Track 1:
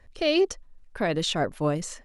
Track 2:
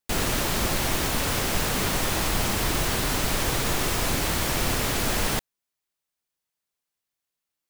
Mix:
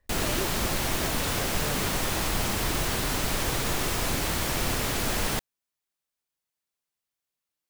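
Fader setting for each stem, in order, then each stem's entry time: -14.5 dB, -2.5 dB; 0.00 s, 0.00 s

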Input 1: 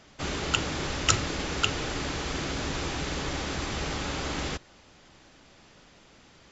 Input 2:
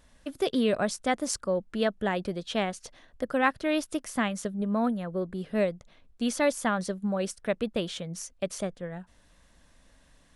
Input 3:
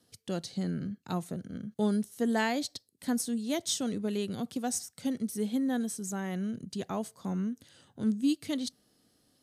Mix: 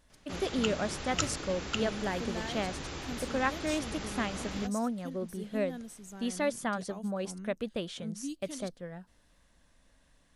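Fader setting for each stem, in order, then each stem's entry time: -8.5 dB, -5.5 dB, -11.5 dB; 0.10 s, 0.00 s, 0.00 s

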